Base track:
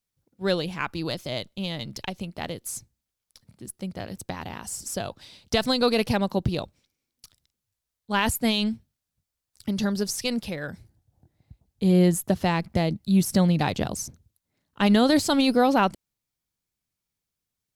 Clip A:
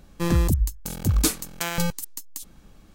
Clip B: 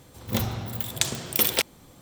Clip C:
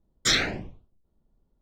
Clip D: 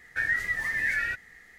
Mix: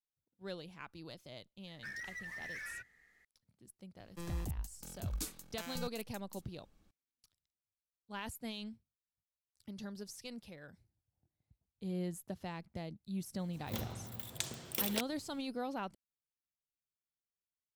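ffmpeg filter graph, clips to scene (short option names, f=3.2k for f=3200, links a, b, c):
-filter_complex "[0:a]volume=-20dB[a];[4:a]asoftclip=type=hard:threshold=-26.5dB[b];[1:a]acrossover=split=160|3000[c][d][e];[d]acompressor=threshold=-24dB:ratio=6:attack=3.2:release=140:knee=2.83:detection=peak[f];[c][f][e]amix=inputs=3:normalize=0[g];[b]atrim=end=1.58,asetpts=PTS-STARTPTS,volume=-15.5dB,afade=t=in:d=0.004:c=hsin,afade=t=out:st=1.576:d=0.004:c=hsin,adelay=1670[h];[g]atrim=end=2.94,asetpts=PTS-STARTPTS,volume=-18dB,afade=t=in:d=0.004:c=hsin,afade=t=out:st=2.936:d=0.004:c=hsin,adelay=175077S[i];[2:a]atrim=end=2.01,asetpts=PTS-STARTPTS,volume=-14dB,afade=t=in:d=0.004:c=hsin,afade=t=out:st=2.006:d=0.004:c=hsin,adelay=13390[j];[a][h][i][j]amix=inputs=4:normalize=0"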